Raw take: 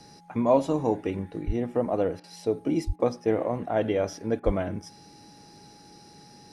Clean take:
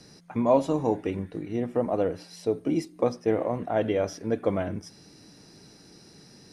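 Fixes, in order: band-stop 830 Hz, Q 30; de-plosive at 1.46/2.86/4.45 s; interpolate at 2.20/2.96/4.40 s, 36 ms

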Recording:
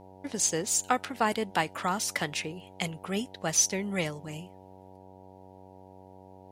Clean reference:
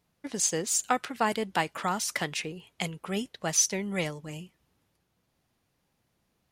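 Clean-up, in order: de-hum 94.4 Hz, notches 10

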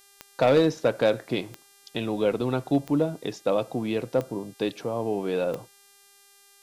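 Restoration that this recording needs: clip repair -12.5 dBFS; de-click; de-hum 399.3 Hz, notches 32

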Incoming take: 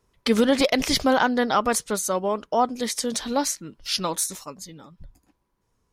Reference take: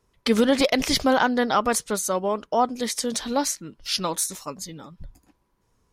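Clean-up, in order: gain correction +4 dB, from 4.44 s

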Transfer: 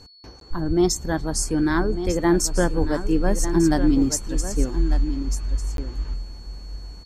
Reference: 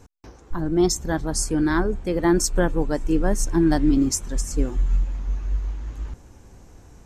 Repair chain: band-stop 4.4 kHz, Q 30; de-plosive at 0.67/2.05/2.80 s; interpolate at 0.40/5.77 s, 12 ms; inverse comb 1198 ms -10.5 dB

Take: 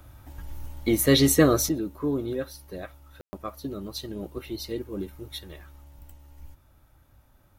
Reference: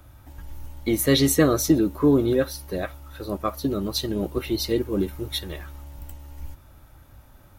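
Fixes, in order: room tone fill 3.21–3.33 s; gain correction +9 dB, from 1.69 s

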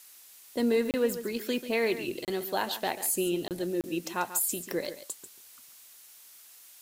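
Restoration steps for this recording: interpolate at 0.91/2.25/3.48/3.81 s, 28 ms; noise reduction 23 dB, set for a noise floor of -53 dBFS; inverse comb 140 ms -12 dB

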